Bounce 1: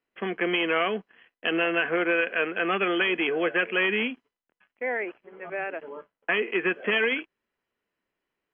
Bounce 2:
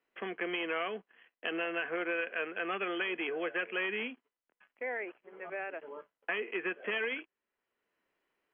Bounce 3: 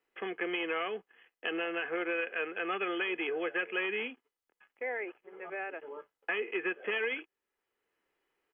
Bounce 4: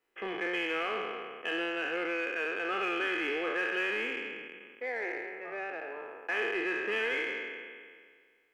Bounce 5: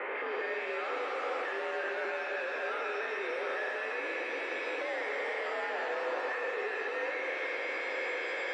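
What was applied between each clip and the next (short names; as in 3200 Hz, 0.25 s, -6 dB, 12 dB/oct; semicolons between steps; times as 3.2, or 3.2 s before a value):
tone controls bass -8 dB, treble -6 dB; three-band squash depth 40%; gain -9 dB
comb 2.4 ms, depth 35%
spectral trails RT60 1.86 s; in parallel at -7 dB: soft clip -33 dBFS, distortion -9 dB; on the sum: gain -4 dB
infinite clipping; mistuned SSB +66 Hz 240–2300 Hz; shimmer reverb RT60 2.4 s, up +7 st, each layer -8 dB, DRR 4.5 dB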